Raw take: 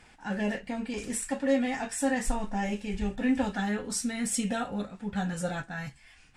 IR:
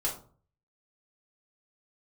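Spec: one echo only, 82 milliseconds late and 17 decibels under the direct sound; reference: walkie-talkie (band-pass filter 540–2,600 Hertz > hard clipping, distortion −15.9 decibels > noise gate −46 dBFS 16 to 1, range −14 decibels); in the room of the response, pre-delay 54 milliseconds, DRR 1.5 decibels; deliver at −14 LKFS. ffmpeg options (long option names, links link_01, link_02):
-filter_complex "[0:a]aecho=1:1:82:0.141,asplit=2[link_01][link_02];[1:a]atrim=start_sample=2205,adelay=54[link_03];[link_02][link_03]afir=irnorm=-1:irlink=0,volume=-7dB[link_04];[link_01][link_04]amix=inputs=2:normalize=0,highpass=540,lowpass=2600,asoftclip=type=hard:threshold=-26.5dB,agate=range=-14dB:threshold=-46dB:ratio=16,volume=21dB"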